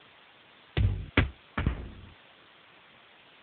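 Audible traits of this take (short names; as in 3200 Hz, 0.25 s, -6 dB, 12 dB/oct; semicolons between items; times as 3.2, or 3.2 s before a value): chopped level 1.2 Hz, depth 65%, duty 75%; a quantiser's noise floor 10-bit, dither triangular; AMR-NB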